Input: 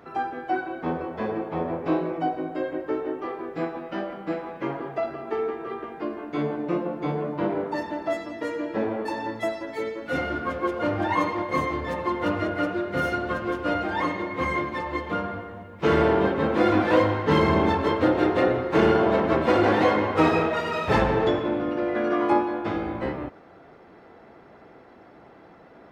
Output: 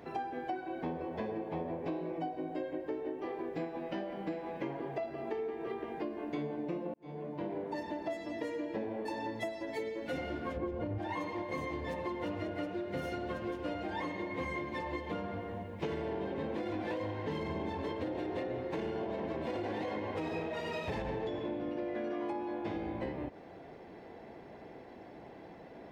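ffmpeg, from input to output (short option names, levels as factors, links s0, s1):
-filter_complex "[0:a]asplit=3[s0][s1][s2];[s0]afade=t=out:st=10.56:d=0.02[s3];[s1]aemphasis=mode=reproduction:type=riaa,afade=t=in:st=10.56:d=0.02,afade=t=out:st=10.97:d=0.02[s4];[s2]afade=t=in:st=10.97:d=0.02[s5];[s3][s4][s5]amix=inputs=3:normalize=0,asplit=2[s6][s7];[s6]atrim=end=6.94,asetpts=PTS-STARTPTS,afade=t=out:st=6.936:d=0.004:c=hsin[s8];[s7]atrim=start=6.94,asetpts=PTS-STARTPTS,afade=t=in:d=1.23[s9];[s8][s9]concat=n=2:v=0:a=1,equalizer=f=1300:w=3.7:g=-13.5,alimiter=limit=0.168:level=0:latency=1:release=69,acompressor=threshold=0.0178:ratio=6"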